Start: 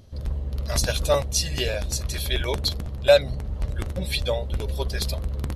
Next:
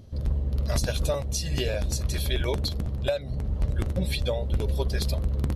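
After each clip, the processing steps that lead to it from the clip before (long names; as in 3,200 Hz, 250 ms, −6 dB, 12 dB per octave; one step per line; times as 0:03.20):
low-shelf EQ 120 Hz −7.5 dB
downward compressor 10 to 1, threshold −24 dBFS, peak gain reduction 14 dB
low-shelf EQ 400 Hz +11 dB
level −3 dB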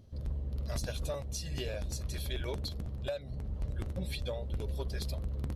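soft clipping −16 dBFS, distortion −23 dB
level −9 dB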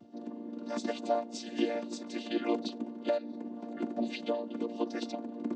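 channel vocoder with a chord as carrier major triad, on A#3
reversed playback
upward compression, threshold −51 dBFS
reversed playback
echo ahead of the sound 33 ms −19.5 dB
level +7.5 dB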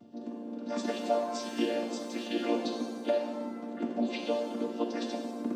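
reverb with rising layers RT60 1.1 s, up +7 semitones, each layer −8 dB, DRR 3 dB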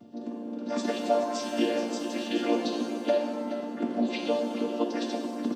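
repeating echo 426 ms, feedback 40%, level −11 dB
level +3.5 dB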